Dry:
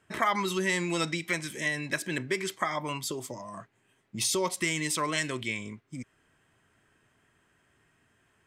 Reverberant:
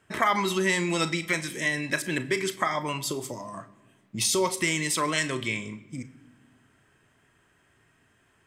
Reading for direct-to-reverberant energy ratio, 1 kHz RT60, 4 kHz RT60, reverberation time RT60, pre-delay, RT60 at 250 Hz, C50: 11.5 dB, 1.1 s, 0.85 s, 1.2 s, 34 ms, 1.8 s, 16.5 dB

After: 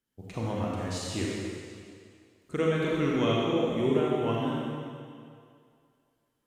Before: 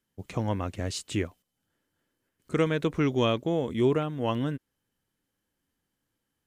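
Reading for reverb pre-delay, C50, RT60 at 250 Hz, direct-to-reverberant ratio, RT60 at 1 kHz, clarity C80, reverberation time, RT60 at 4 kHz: 32 ms, -3.0 dB, 2.1 s, -5.0 dB, 2.3 s, -1.0 dB, 2.2 s, 2.1 s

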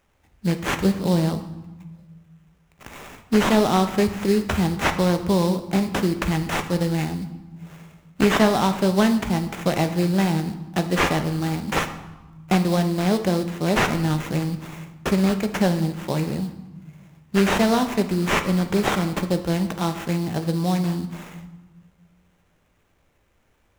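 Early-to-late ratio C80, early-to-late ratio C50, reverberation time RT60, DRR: 13.5 dB, 11.0 dB, 1.1 s, 7.0 dB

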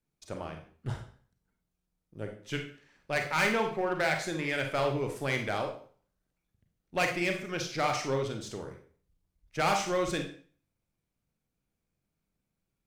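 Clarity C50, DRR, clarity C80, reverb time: 7.0 dB, 3.5 dB, 12.0 dB, 0.45 s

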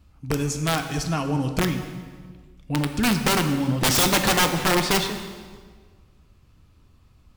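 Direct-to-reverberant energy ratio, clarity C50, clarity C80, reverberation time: 6.0 dB, 8.0 dB, 9.5 dB, 1.6 s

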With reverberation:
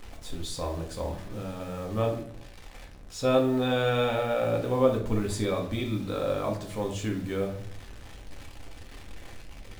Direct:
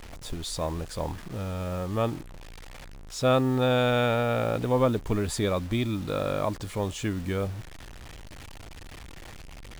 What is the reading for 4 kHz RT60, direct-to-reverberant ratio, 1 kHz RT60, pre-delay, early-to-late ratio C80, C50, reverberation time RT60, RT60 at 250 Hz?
0.45 s, 0.5 dB, 0.55 s, 4 ms, 12.0 dB, 7.5 dB, 0.65 s, 0.70 s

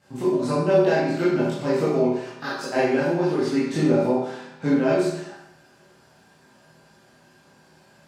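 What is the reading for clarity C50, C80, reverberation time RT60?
-0.5 dB, 3.5 dB, 0.80 s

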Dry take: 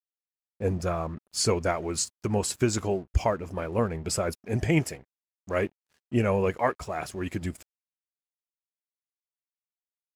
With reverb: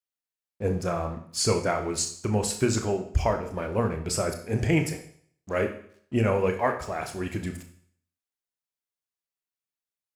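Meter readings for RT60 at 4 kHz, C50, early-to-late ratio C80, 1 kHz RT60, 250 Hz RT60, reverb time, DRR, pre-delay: 0.60 s, 9.5 dB, 13.0 dB, 0.60 s, 0.60 s, 0.60 s, 5.0 dB, 25 ms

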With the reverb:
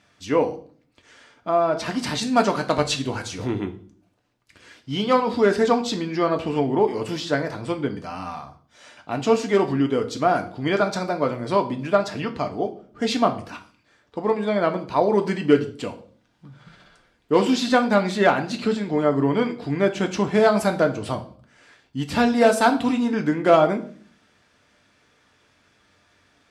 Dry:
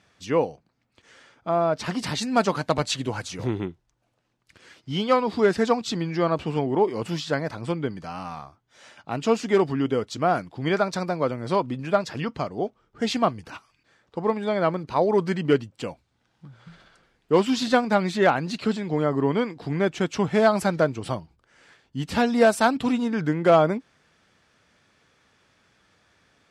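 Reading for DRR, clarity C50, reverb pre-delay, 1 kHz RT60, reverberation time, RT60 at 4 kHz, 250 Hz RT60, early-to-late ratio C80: 4.5 dB, 14.0 dB, 3 ms, 0.45 s, 0.50 s, 0.40 s, 0.70 s, 18.0 dB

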